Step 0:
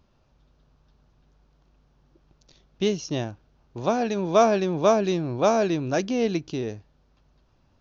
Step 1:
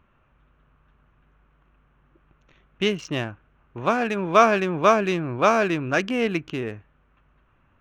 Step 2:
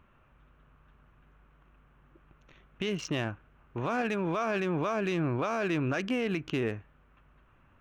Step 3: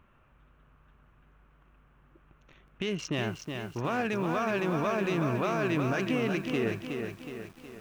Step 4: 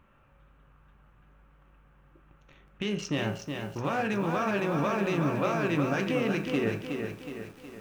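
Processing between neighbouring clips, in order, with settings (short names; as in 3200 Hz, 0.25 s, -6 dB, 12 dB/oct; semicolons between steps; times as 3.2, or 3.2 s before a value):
Wiener smoothing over 9 samples; band shelf 1800 Hz +10.5 dB
compressor, threshold -21 dBFS, peak gain reduction 11 dB; limiter -22 dBFS, peak gain reduction 10.5 dB
lo-fi delay 0.368 s, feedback 55%, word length 9-bit, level -5.5 dB
reverb RT60 0.50 s, pre-delay 3 ms, DRR 5 dB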